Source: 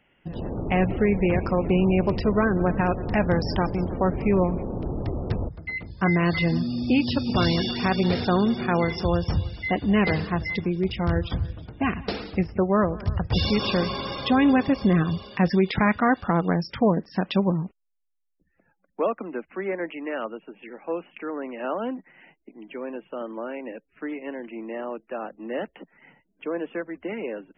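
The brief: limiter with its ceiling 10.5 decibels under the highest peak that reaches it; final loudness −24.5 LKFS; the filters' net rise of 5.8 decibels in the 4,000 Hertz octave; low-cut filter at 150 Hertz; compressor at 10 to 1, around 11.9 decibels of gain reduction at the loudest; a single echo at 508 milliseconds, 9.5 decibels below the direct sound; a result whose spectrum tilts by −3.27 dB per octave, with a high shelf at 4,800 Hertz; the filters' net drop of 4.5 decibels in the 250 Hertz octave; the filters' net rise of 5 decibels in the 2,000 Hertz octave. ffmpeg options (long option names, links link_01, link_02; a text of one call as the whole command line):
ffmpeg -i in.wav -af "highpass=150,equalizer=frequency=250:width_type=o:gain=-5,equalizer=frequency=2000:width_type=o:gain=4.5,equalizer=frequency=4000:width_type=o:gain=4,highshelf=frequency=4800:gain=4,acompressor=threshold=-29dB:ratio=10,alimiter=level_in=0.5dB:limit=-24dB:level=0:latency=1,volume=-0.5dB,aecho=1:1:508:0.335,volume=10.5dB" out.wav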